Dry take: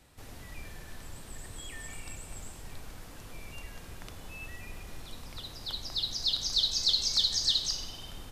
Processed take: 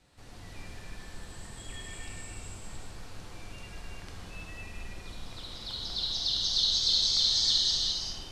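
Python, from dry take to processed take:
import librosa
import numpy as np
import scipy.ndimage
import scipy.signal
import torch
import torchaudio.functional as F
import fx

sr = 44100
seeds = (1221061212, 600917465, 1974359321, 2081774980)

y = scipy.signal.sosfilt(scipy.signal.butter(2, 8300.0, 'lowpass', fs=sr, output='sos'), x)
y = fx.peak_eq(y, sr, hz=4400.0, db=3.5, octaves=0.22)
y = fx.rev_gated(y, sr, seeds[0], gate_ms=430, shape='flat', drr_db=-4.0)
y = y * 10.0 ** (-4.5 / 20.0)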